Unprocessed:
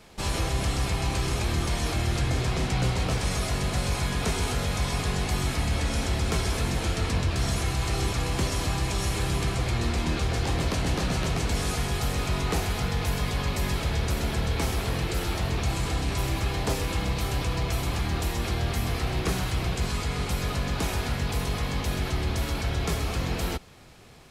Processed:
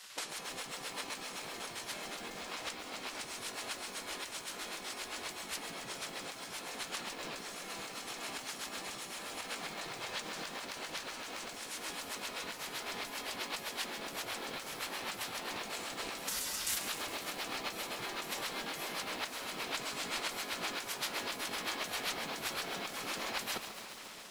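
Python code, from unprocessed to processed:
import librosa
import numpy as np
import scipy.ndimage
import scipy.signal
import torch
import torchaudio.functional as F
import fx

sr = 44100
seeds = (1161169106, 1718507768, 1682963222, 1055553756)

p1 = fx.highpass(x, sr, hz=940.0, slope=6, at=(16.28, 16.78))
p2 = fx.spec_gate(p1, sr, threshold_db=-15, keep='weak')
p3 = fx.over_compress(p2, sr, threshold_db=-40.0, ratio=-0.5)
p4 = p3 + fx.echo_filtered(p3, sr, ms=498, feedback_pct=79, hz=2000.0, wet_db=-15.0, dry=0)
y = fx.echo_crushed(p4, sr, ms=137, feedback_pct=80, bits=8, wet_db=-9.5)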